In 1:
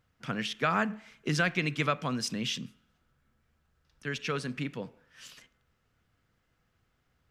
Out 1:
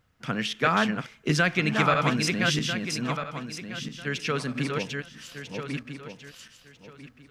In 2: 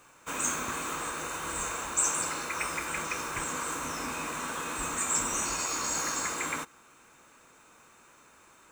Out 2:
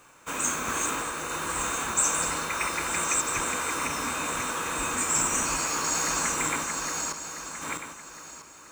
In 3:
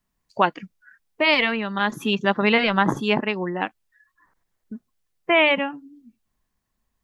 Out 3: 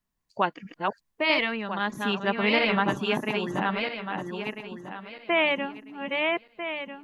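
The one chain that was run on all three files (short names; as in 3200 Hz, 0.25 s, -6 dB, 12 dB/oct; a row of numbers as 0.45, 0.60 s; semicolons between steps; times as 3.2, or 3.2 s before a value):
regenerating reverse delay 0.648 s, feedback 46%, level -3 dB; match loudness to -27 LUFS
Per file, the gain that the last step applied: +4.5, +2.5, -6.0 dB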